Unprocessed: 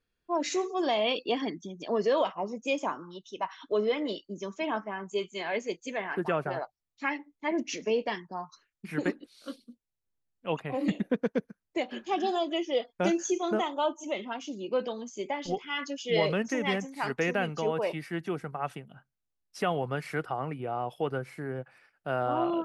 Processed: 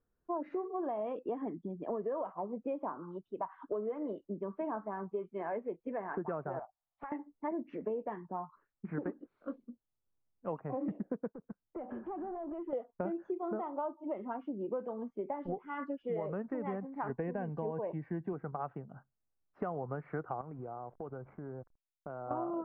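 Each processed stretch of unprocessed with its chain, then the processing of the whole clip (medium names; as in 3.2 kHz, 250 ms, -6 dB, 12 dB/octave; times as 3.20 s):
6.59–7.12 s: resonant low shelf 530 Hz -9.5 dB, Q 3 + compression 8:1, threshold -39 dBFS + loudspeaker Doppler distortion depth 0.49 ms
11.32–12.73 s: compression 12:1, threshold -42 dBFS + waveshaping leveller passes 2 + distance through air 270 m
17.09–18.33 s: Butterworth band-stop 1.3 kHz, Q 4.1 + tone controls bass +5 dB, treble +10 dB
20.41–22.31 s: hysteresis with a dead band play -43.5 dBFS + compression 4:1, threshold -42 dBFS + band-stop 1.8 kHz, Q 10
whole clip: low-pass 1.3 kHz 24 dB/octave; compression, threshold -35 dBFS; trim +1 dB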